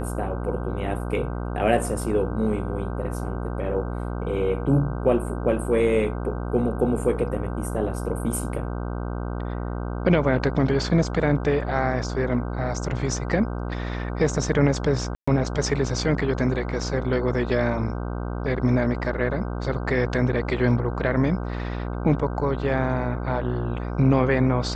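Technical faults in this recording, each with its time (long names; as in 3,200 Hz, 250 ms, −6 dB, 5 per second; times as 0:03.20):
mains buzz 60 Hz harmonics 26 −29 dBFS
0:15.15–0:15.28: drop-out 125 ms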